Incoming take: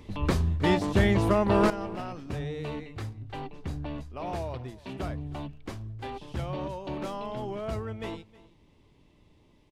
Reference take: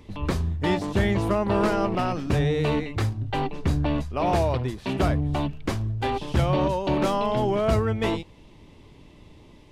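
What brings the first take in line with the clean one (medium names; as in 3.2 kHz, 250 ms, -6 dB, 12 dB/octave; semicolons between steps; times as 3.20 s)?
inverse comb 315 ms -20.5 dB; gain correction +11.5 dB, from 1.70 s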